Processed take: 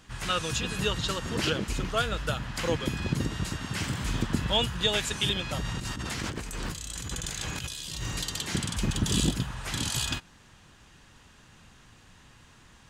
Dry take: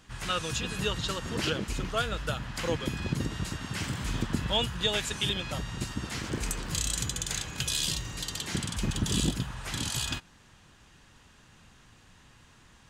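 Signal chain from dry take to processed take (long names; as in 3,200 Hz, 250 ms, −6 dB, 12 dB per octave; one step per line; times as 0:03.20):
0:05.64–0:08.23: compressor whose output falls as the input rises −37 dBFS, ratio −1
level +2 dB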